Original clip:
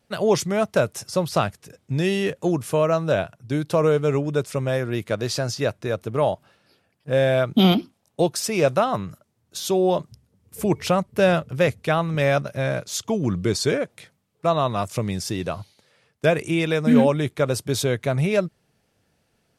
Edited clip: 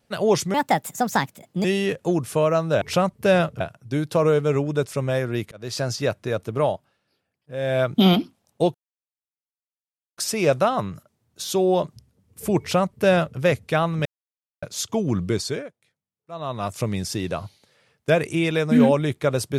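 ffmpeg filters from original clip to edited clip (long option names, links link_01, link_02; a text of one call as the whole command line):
ffmpeg -i in.wav -filter_complex "[0:a]asplit=13[link_01][link_02][link_03][link_04][link_05][link_06][link_07][link_08][link_09][link_10][link_11][link_12][link_13];[link_01]atrim=end=0.544[link_14];[link_02]atrim=start=0.54:end=2.02,asetpts=PTS-STARTPTS,asetrate=59094,aresample=44100,atrim=end_sample=48707,asetpts=PTS-STARTPTS[link_15];[link_03]atrim=start=2.016:end=3.192[link_16];[link_04]atrim=start=10.748:end=11.542[link_17];[link_05]atrim=start=3.188:end=5.1,asetpts=PTS-STARTPTS,afade=type=out:start_time=1.908:duration=0.004:curve=hsin[link_18];[link_06]atrim=start=5.1:end=6.48,asetpts=PTS-STARTPTS,afade=type=in:duration=0.32,afade=type=out:start_time=1.11:duration=0.27:silence=0.281838[link_19];[link_07]atrim=start=6.48:end=7.15,asetpts=PTS-STARTPTS,volume=-11dB[link_20];[link_08]atrim=start=7.15:end=8.33,asetpts=PTS-STARTPTS,afade=type=in:duration=0.27:silence=0.281838,afade=type=out:start_time=1.176:duration=0.004:curve=hsin,apad=pad_dur=1.43[link_21];[link_09]atrim=start=8.33:end=12.21,asetpts=PTS-STARTPTS,afade=type=in:duration=0.004:curve=hsin,afade=type=out:start_time=3.876:duration=0.004:curve=hsin[link_22];[link_10]atrim=start=12.21:end=12.78,asetpts=PTS-STARTPTS,volume=0[link_23];[link_11]atrim=start=12.78:end=13.9,asetpts=PTS-STARTPTS,afade=type=in:duration=0.004:curve=hsin,afade=type=out:start_time=0.63:duration=0.49:silence=0.0841395[link_24];[link_12]atrim=start=13.9:end=14.45,asetpts=PTS-STARTPTS,volume=-21.5dB[link_25];[link_13]atrim=start=14.45,asetpts=PTS-STARTPTS,afade=type=in:duration=0.49:silence=0.0841395[link_26];[link_14][link_15]acrossfade=duration=0.004:curve1=hsin:curve2=hsin[link_27];[link_27][link_16]acrossfade=duration=0.004:curve1=hsin:curve2=hsin[link_28];[link_28][link_17]acrossfade=duration=0.004:curve1=hsin:curve2=hsin[link_29];[link_18][link_19][link_20][link_21][link_22][link_23][link_24][link_25][link_26]concat=n=9:v=0:a=1[link_30];[link_29][link_30]acrossfade=duration=0.004:curve1=hsin:curve2=hsin" out.wav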